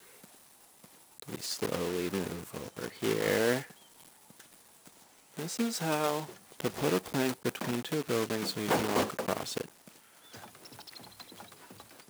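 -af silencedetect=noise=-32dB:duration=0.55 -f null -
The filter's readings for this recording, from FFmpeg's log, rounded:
silence_start: 0.00
silence_end: 1.20 | silence_duration: 1.20
silence_start: 3.61
silence_end: 5.39 | silence_duration: 1.77
silence_start: 9.61
silence_end: 12.10 | silence_duration: 2.48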